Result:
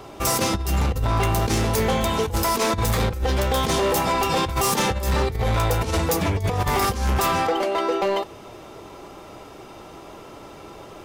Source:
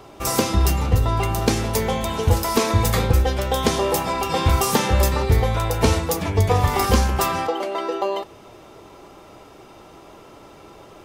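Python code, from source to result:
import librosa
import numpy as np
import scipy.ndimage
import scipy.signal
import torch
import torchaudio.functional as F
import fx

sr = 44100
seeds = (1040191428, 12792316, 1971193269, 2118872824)

y = fx.over_compress(x, sr, threshold_db=-20.0, ratio=-0.5)
y = np.clip(y, -10.0 ** (-18.5 / 20.0), 10.0 ** (-18.5 / 20.0))
y = F.gain(torch.from_numpy(y), 1.5).numpy()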